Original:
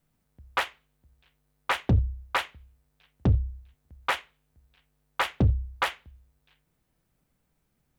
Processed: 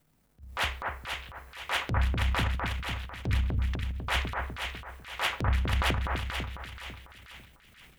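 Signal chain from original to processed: compressor, threshold -29 dBFS, peak gain reduction 11.5 dB; split-band echo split 1700 Hz, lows 0.249 s, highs 0.481 s, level -3 dB; transient shaper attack -11 dB, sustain +11 dB; gain +4.5 dB

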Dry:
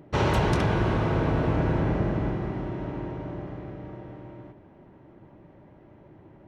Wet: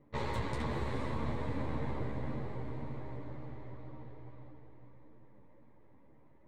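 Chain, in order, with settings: half-wave gain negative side -12 dB; ripple EQ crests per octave 1, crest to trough 8 dB; diffused feedback echo 0.463 s, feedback 41%, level -6 dB; low-pass opened by the level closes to 3000 Hz, open at -24 dBFS; ensemble effect; gain -7.5 dB

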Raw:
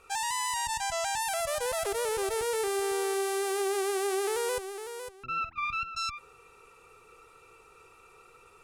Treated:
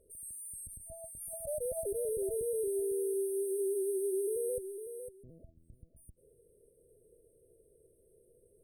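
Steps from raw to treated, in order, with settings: FFT band-reject 660–8300 Hz; dynamic EQ 190 Hz, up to +3 dB, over -49 dBFS, Q 0.78; gain -3.5 dB

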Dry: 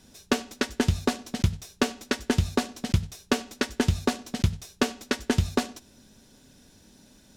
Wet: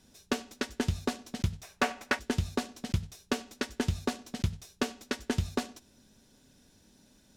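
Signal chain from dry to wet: 1.63–2.19 band shelf 1200 Hz +10.5 dB 2.5 oct; hard clip -12 dBFS, distortion -18 dB; gain -6.5 dB

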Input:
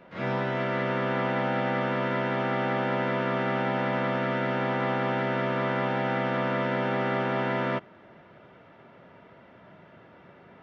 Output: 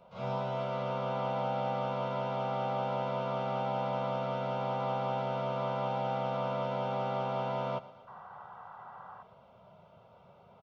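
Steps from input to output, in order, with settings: painted sound noise, 8.07–9.23, 710–2000 Hz -42 dBFS; fixed phaser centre 750 Hz, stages 4; on a send: feedback echo 0.118 s, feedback 57%, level -17.5 dB; on the sum: gain -2.5 dB

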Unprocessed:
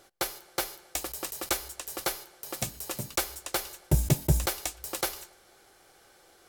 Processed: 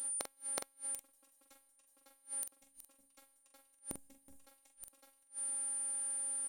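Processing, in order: whine 9200 Hz -36 dBFS; robotiser 273 Hz; flipped gate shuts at -23 dBFS, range -34 dB; doubler 44 ms -7 dB

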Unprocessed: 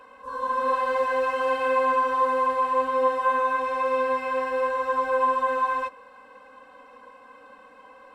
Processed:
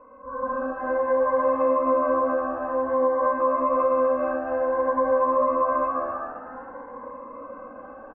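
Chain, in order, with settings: frequency-shifting echo 0.262 s, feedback 46%, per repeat +74 Hz, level -12 dB; AGC gain up to 9 dB; on a send at -4.5 dB: reverb RT60 1.9 s, pre-delay 3 ms; on the sum: compressor, threshold -19 dBFS, peak gain reduction 9.5 dB; LPF 1300 Hz 24 dB/oct; cascading phaser rising 0.54 Hz; gain +2.5 dB

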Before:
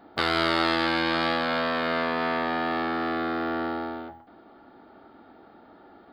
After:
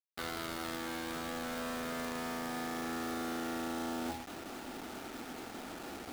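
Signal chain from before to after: resonator 250 Hz, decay 0.18 s, harmonics all, mix 50%; in parallel at -10 dB: sample-rate reducer 1100 Hz, jitter 0%; on the sum: reverse; compressor 16:1, threshold -43 dBFS, peak gain reduction 21.5 dB; reverse; companded quantiser 4-bit; gain +8 dB

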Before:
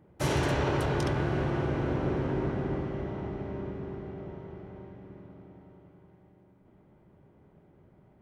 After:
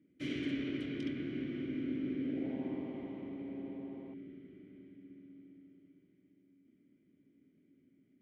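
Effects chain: vowel filter i; 2.11–4.14 frequency-shifting echo 84 ms, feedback 62%, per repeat +130 Hz, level -14 dB; gain +3 dB

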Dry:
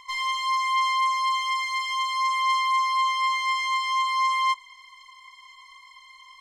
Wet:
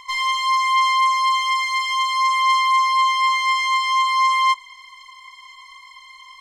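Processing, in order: 2.88–3.29 HPF 340 Hz 12 dB/oct; gain +6 dB

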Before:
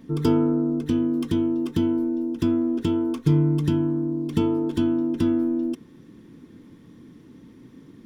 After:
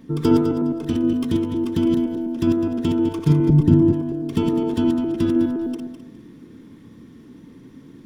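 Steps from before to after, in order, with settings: regenerating reverse delay 0.103 s, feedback 50%, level -4 dB; 3.49–3.93 tilt shelf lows +8 dB, about 730 Hz; gain +1.5 dB

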